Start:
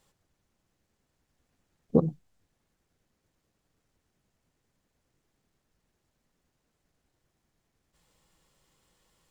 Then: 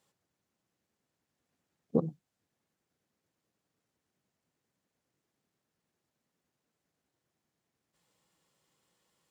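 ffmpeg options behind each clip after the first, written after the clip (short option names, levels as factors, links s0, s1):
-af "highpass=130,volume=0.531"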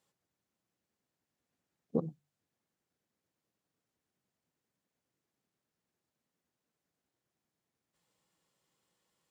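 -af "bandreject=f=48.55:t=h:w=4,bandreject=f=97.1:t=h:w=4,bandreject=f=145.65:t=h:w=4,volume=0.631"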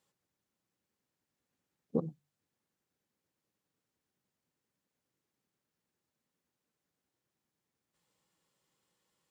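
-af "bandreject=f=680:w=12"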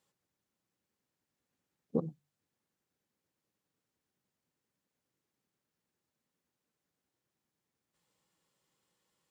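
-af anull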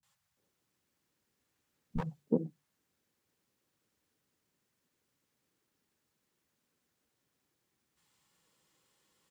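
-filter_complex "[0:a]acrossover=split=330[s0][s1];[s1]aeval=exprs='clip(val(0),-1,0.00668)':c=same[s2];[s0][s2]amix=inputs=2:normalize=0,acrossover=split=170|690[s3][s4][s5];[s5]adelay=30[s6];[s4]adelay=370[s7];[s3][s7][s6]amix=inputs=3:normalize=0,volume=2.11"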